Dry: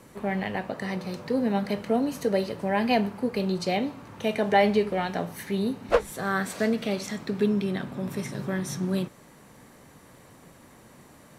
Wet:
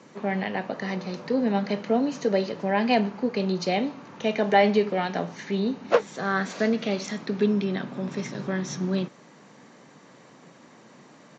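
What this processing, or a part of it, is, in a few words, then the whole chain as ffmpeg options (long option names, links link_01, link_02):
Bluetooth headset: -af "highpass=frequency=150:width=0.5412,highpass=frequency=150:width=1.3066,aresample=16000,aresample=44100,volume=1.5dB" -ar 16000 -c:a sbc -b:a 64k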